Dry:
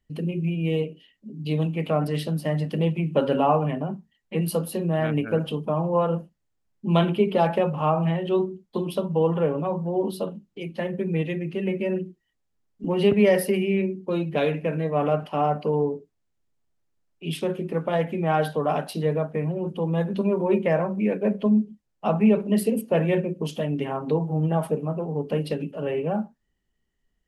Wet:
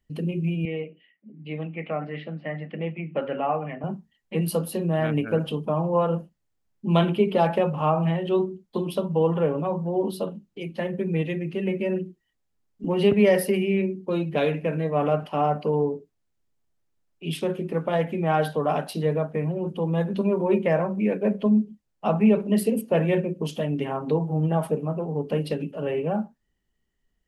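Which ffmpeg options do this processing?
-filter_complex "[0:a]asettb=1/sr,asplit=3[s0][s1][s2];[s0]atrim=end=0.654[s3];[s1]atrim=start=0.65:end=3.84,asetpts=PTS-STARTPTS,afade=t=in:d=0.004:c=qsin,afade=t=out:st=3.186:d=0.004:c=qsin,highpass=250,equalizer=f=270:t=q:w=4:g=-7,equalizer=f=410:t=q:w=4:g=-8,equalizer=f=590:t=q:w=4:g=-4,equalizer=f=970:t=q:w=4:g=-10,equalizer=f=1500:t=q:w=4:g=-3,equalizer=f=2100:t=q:w=4:g=6,lowpass=f=2400:w=0.5412,lowpass=f=2400:w=1.3066[s4];[s2]atrim=start=3.836[s5];[s3][s4]acrossfade=d=0.004:c1=hsin:c2=qsin[s6];[s6][s5]acrossfade=d=0.004:c1=qsin:c2=hsin"

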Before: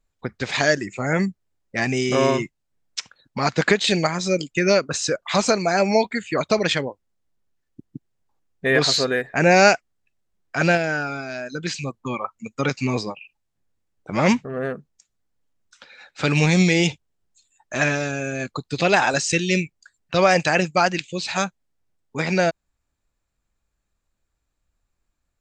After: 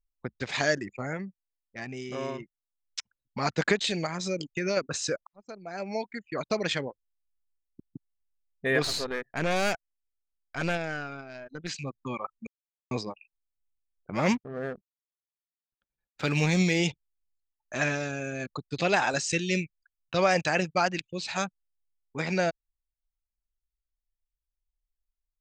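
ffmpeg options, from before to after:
-filter_complex "[0:a]asettb=1/sr,asplit=3[s0][s1][s2];[s0]atrim=end=3.874[s3];[s1]atrim=start=3.87:end=4.77,asetpts=PTS-STARTPTS,afade=t=in:d=0.004:c=qsin,afade=t=out:st=0.896:d=0.004:c=qsin,acompressor=threshold=0.1:ratio=2:attack=3.2:release=140:knee=1:detection=peak[s4];[s2]atrim=start=4.766[s5];[s3][s4]acrossfade=d=0.004:c1=hsin:c2=qsin[s6];[s6][s5]acrossfade=d=0.004:c1=qsin:c2=hsin,asettb=1/sr,asplit=3[s7][s8][s9];[s7]atrim=end=8.824[s10];[s8]atrim=start=8.82:end=11.69,asetpts=PTS-STARTPTS,afade=t=in:d=0.004:c=qsin,afade=t=out:st=2.866:d=0.004:c=qsin,aeval=exprs='(tanh(6.31*val(0)+0.7)-tanh(0.7))/6.31':c=same[s11];[s9]atrim=start=11.686[s12];[s10][s11]acrossfade=d=0.004:c1=hsin:c2=qsin[s13];[s13][s12]acrossfade=d=0.004:c1=qsin:c2=hsin,asettb=1/sr,asplit=3[s14][s15][s16];[s14]atrim=end=14.144[s17];[s15]atrim=start=14.14:end=16.79,asetpts=PTS-STARTPTS,afade=t=in:d=0.004:c=qsin,afade=t=out:st=2.646:d=0.004:c=qsin,aeval=exprs='sgn(val(0))*max(abs(val(0))-0.00531,0)':c=same[s18];[s16]atrim=start=16.786[s19];[s17][s18]acrossfade=d=0.004:c1=hsin:c2=qsin[s20];[s20][s19]acrossfade=d=0.004:c1=qsin:c2=hsin,asplit=6[s21][s22][s23][s24][s25][s26];[s21]atrim=end=1.18,asetpts=PTS-STARTPTS,afade=t=out:st=0.97:d=0.21:silence=0.375837[s27];[s22]atrim=start=1.18:end=2.78,asetpts=PTS-STARTPTS,volume=0.376[s28];[s23]atrim=start=2.78:end=5.27,asetpts=PTS-STARTPTS,afade=t=in:d=0.21:silence=0.375837,afade=t=out:st=2.486:d=0.004:c=hsin[s29];[s24]atrim=start=5.27:end=12.47,asetpts=PTS-STARTPTS,afade=t=in:d=1.59,afade=t=out:st=7.196:d=0.004:c=hsin[s30];[s25]atrim=start=12.47:end=12.91,asetpts=PTS-STARTPTS,volume=0[s31];[s26]atrim=start=12.91,asetpts=PTS-STARTPTS,afade=t=in:d=0.004:c=hsin[s32];[s27][s28][s29][s30][s31][s32]concat=n=6:v=0:a=1,anlmdn=6.31,volume=0.447"

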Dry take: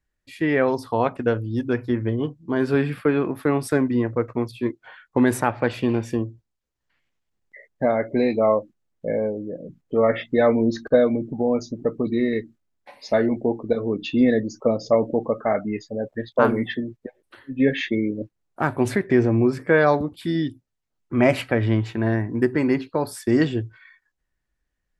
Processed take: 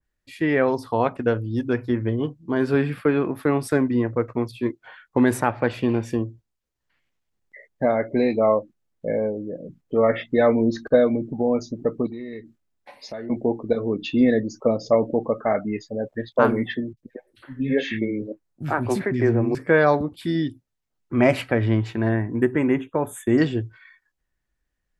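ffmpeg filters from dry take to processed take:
-filter_complex "[0:a]asettb=1/sr,asplit=3[s0][s1][s2];[s0]atrim=end=12.064[s3];[s1]atrim=start=12.06:end=13.3,asetpts=PTS-STARTPTS,afade=t=in:d=0.004:c=qsin,afade=t=out:st=1.236:d=0.004:c=qsin,acompressor=threshold=0.0178:ratio=3:attack=3.2:release=140:knee=1:detection=peak[s4];[s2]atrim=start=13.296[s5];[s3][s4]acrossfade=d=0.004:c1=hsin:c2=qsin[s6];[s6][s5]acrossfade=d=0.004:c1=qsin:c2=hsin,asettb=1/sr,asplit=3[s7][s8][s9];[s7]atrim=end=16.934[s10];[s8]atrim=start=16.93:end=19.55,asetpts=PTS-STARTPTS,afade=t=in:d=0.004:c=qsin,afade=t=out:st=2.616:d=0.004:c=qsin,acrossover=split=250|2600[s11][s12][s13];[s13]adelay=40[s14];[s12]adelay=100[s15];[s11][s15][s14]amix=inputs=3:normalize=0,atrim=end_sample=115542[s16];[s9]atrim=start=19.546[s17];[s10][s16]acrossfade=d=0.004:c1=hsin:c2=qsin[s18];[s18][s17]acrossfade=d=0.004:c1=qsin:c2=hsin,asettb=1/sr,asplit=3[s19][s20][s21];[s19]atrim=end=22.094[s22];[s20]atrim=start=22.09:end=23.38,asetpts=PTS-STARTPTS,afade=t=in:d=0.004:c=qsin,afade=t=out:st=1.286:d=0.004:c=qsin,asuperstop=centerf=4800:order=20:qfactor=1.9[s23];[s21]atrim=start=23.376[s24];[s22][s23]acrossfade=d=0.004:c1=hsin:c2=qsin[s25];[s25][s24]acrossfade=d=0.004:c1=qsin:c2=hsin,adynamicequalizer=threshold=0.0178:dfrequency=2600:dqfactor=0.7:tfrequency=2600:tqfactor=0.7:attack=5:release=100:ratio=0.375:range=2:mode=cutabove:tftype=highshelf"

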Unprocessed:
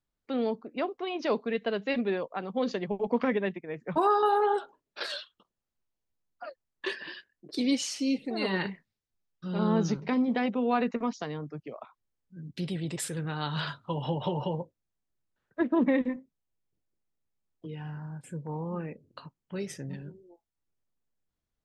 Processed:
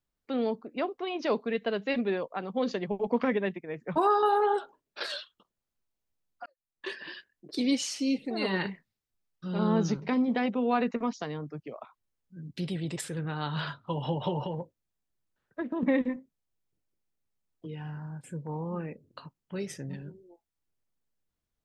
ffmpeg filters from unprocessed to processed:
-filter_complex "[0:a]asettb=1/sr,asplit=3[s0][s1][s2];[s0]atrim=end=13.014[s3];[s1]atrim=start=13.01:end=13.87,asetpts=PTS-STARTPTS,afade=t=in:d=0.004:c=qsin,afade=t=out:st=0.856:d=0.004:c=qsin,highshelf=f=5400:g=-10[s4];[s2]atrim=start=13.866[s5];[s3][s4]acrossfade=d=0.004:c1=hsin:c2=qsin[s6];[s6][s5]acrossfade=d=0.004:c1=qsin:c2=hsin,asettb=1/sr,asplit=3[s7][s8][s9];[s7]atrim=end=14.454[s10];[s8]atrim=start=14.45:end=15.83,asetpts=PTS-STARTPTS,afade=t=in:d=0.004:c=qsin,afade=t=out:st=1.376:d=0.004:c=qsin,acompressor=threshold=0.0355:ratio=6:attack=3.2:release=140:knee=1:detection=peak[s11];[s9]atrim=start=15.826[s12];[s10][s11]acrossfade=d=0.004:c1=hsin:c2=qsin[s13];[s13][s12]acrossfade=d=0.004:c1=qsin:c2=hsin,asplit=2[s14][s15];[s14]atrim=end=6.46,asetpts=PTS-STARTPTS,afade=t=out:st=6.456:d=0.004:c=hsin[s16];[s15]atrim=start=6.46,asetpts=PTS-STARTPTS,afade=t=in:d=0.68[s17];[s16][s17]concat=n=2:v=0:a=1"

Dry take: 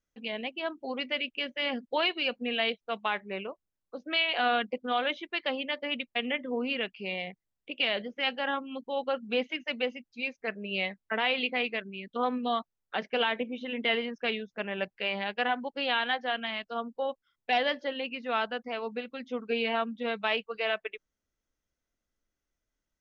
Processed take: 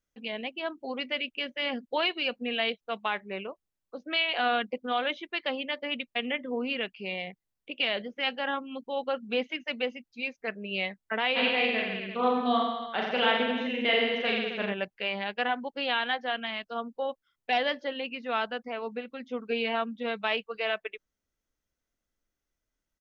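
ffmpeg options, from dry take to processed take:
-filter_complex "[0:a]asplit=3[s0][s1][s2];[s0]afade=t=out:st=11.35:d=0.02[s3];[s1]aecho=1:1:40|86|138.9|199.7|269.7|350.1:0.794|0.631|0.501|0.398|0.316|0.251,afade=t=in:st=11.35:d=0.02,afade=t=out:st=14.72:d=0.02[s4];[s2]afade=t=in:st=14.72:d=0.02[s5];[s3][s4][s5]amix=inputs=3:normalize=0,asettb=1/sr,asplit=3[s6][s7][s8];[s6]atrim=end=18.664[s9];[s7]atrim=start=18.66:end=19.4,asetpts=PTS-STARTPTS,afade=t=in:d=0.004:c=qsin,afade=t=out:st=0.736:d=0.004:c=qsin,acrossover=split=3000[s10][s11];[s11]acompressor=threshold=0.00158:ratio=4:attack=1:release=60[s12];[s10][s12]amix=inputs=2:normalize=0[s13];[s8]atrim=start=19.396[s14];[s9][s13]acrossfade=d=0.004:c1=hsin:c2=qsin[s15];[s15][s14]acrossfade=d=0.004:c1=qsin:c2=hsin"

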